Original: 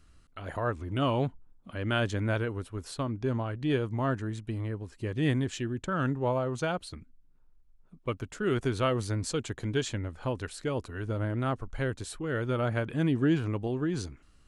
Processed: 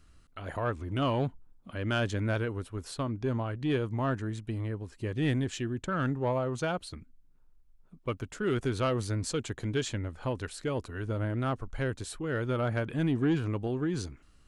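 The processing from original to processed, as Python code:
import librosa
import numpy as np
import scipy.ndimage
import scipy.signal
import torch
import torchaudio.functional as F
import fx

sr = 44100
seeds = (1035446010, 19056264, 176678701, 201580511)

y = 10.0 ** (-19.0 / 20.0) * np.tanh(x / 10.0 ** (-19.0 / 20.0))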